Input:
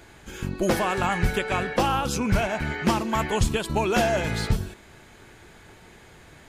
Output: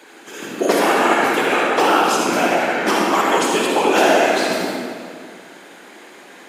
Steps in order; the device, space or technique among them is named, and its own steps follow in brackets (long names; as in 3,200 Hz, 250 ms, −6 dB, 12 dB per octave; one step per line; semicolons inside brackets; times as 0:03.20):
whispering ghost (random phases in short frames; high-pass filter 270 Hz 24 dB per octave; convolution reverb RT60 2.1 s, pre-delay 48 ms, DRR −2.5 dB)
level +5.5 dB